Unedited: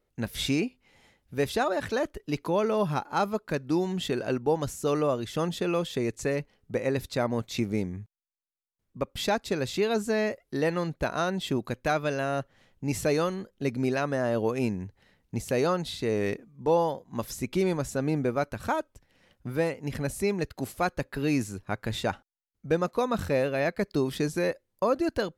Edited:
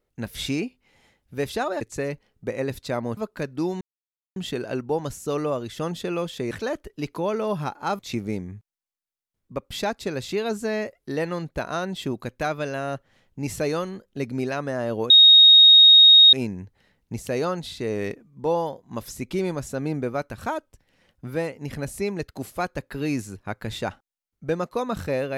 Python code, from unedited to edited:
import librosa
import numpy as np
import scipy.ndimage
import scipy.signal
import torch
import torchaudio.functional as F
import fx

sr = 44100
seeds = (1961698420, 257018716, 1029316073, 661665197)

y = fx.edit(x, sr, fx.swap(start_s=1.81, length_s=1.48, other_s=6.08, other_length_s=1.36),
    fx.insert_silence(at_s=3.93, length_s=0.55),
    fx.insert_tone(at_s=14.55, length_s=1.23, hz=3740.0, db=-8.0), tone=tone)